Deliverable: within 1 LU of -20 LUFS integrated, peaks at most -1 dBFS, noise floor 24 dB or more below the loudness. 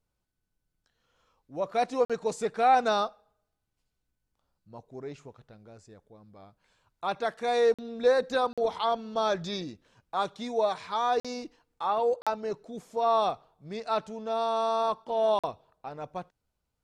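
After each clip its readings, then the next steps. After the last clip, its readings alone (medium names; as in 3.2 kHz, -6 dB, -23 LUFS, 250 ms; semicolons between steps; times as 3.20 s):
dropouts 6; longest dropout 46 ms; loudness -28.5 LUFS; peak level -12.5 dBFS; loudness target -20.0 LUFS
-> interpolate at 2.05/7.74/8.53/11.20/12.22/15.39 s, 46 ms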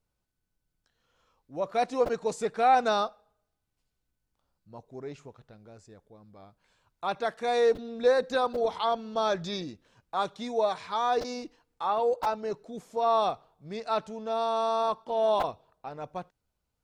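dropouts 0; loudness -28.5 LUFS; peak level -12.5 dBFS; loudness target -20.0 LUFS
-> trim +8.5 dB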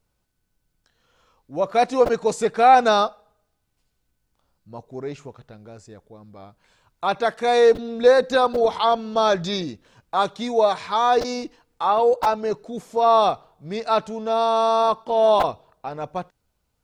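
loudness -20.0 LUFS; peak level -4.0 dBFS; noise floor -74 dBFS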